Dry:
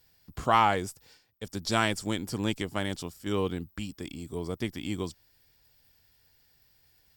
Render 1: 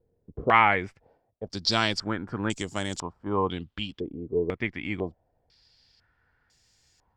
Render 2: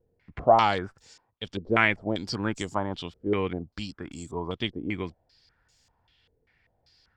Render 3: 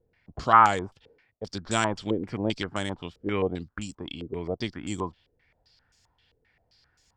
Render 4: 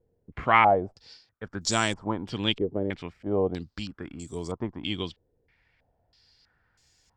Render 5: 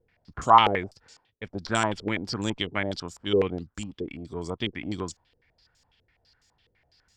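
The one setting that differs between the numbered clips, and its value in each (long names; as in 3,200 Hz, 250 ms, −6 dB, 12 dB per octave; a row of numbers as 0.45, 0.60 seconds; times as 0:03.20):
low-pass on a step sequencer, speed: 2, 5.1, 7.6, 3.1, 12 Hertz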